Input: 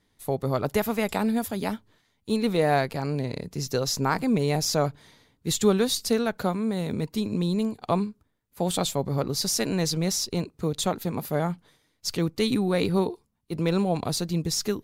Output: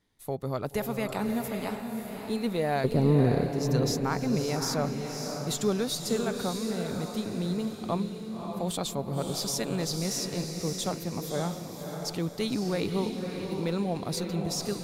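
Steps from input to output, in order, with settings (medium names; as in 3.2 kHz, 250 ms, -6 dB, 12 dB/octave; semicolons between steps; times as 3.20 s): 2.84–3.46 s: resonant low shelf 680 Hz +13 dB, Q 1.5; saturation -9 dBFS, distortion -18 dB; echo that smears into a reverb 575 ms, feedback 46%, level -5 dB; trim -5.5 dB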